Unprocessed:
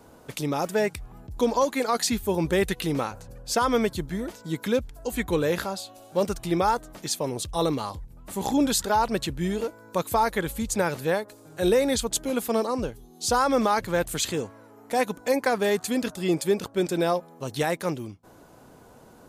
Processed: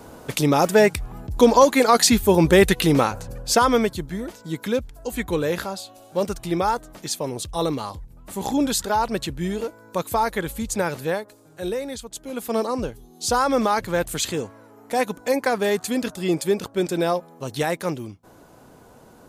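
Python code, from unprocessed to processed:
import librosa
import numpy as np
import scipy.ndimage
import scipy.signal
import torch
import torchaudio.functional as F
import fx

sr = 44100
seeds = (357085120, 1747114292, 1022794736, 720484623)

y = fx.gain(x, sr, db=fx.line((3.39, 9.0), (3.99, 1.0), (11.03, 1.0), (12.11, -10.0), (12.59, 2.0)))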